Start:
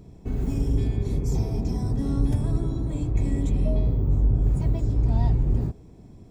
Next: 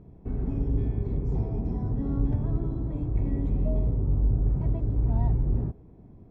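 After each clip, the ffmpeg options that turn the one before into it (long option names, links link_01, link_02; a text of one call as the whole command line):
ffmpeg -i in.wav -af "lowpass=1500,volume=-3dB" out.wav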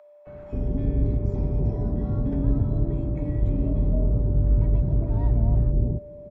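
ffmpeg -i in.wav -filter_complex "[0:a]aeval=exprs='val(0)+0.01*sin(2*PI*590*n/s)':channel_layout=same,acrossover=split=770[link_01][link_02];[link_01]adelay=270[link_03];[link_03][link_02]amix=inputs=2:normalize=0,volume=3.5dB" out.wav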